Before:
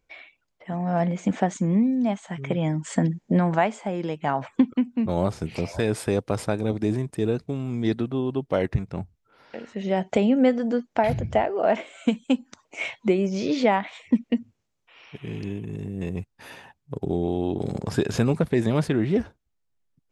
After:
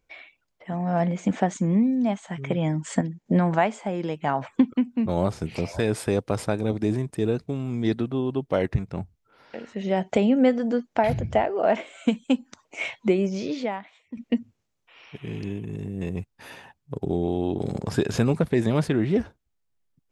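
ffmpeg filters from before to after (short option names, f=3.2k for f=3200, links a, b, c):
-filter_complex "[0:a]asplit=4[a][b][c][d];[a]atrim=end=3.012[e];[b]atrim=start=3.008:end=3.262,asetpts=PTS-STARTPTS,volume=-7.5dB[f];[c]atrim=start=3.258:end=14.17,asetpts=PTS-STARTPTS,afade=t=out:st=9.982:d=0.93:c=qua:silence=0.133352[g];[d]atrim=start=14.17,asetpts=PTS-STARTPTS,afade=t=in:d=0.004:c=hsin:silence=0.133352[h];[e][f]acrossfade=d=0.004:c1=hsin:c2=hsin[i];[g][h]concat=n=2:v=0:a=1[j];[i][j]acrossfade=d=0.004:c1=hsin:c2=hsin"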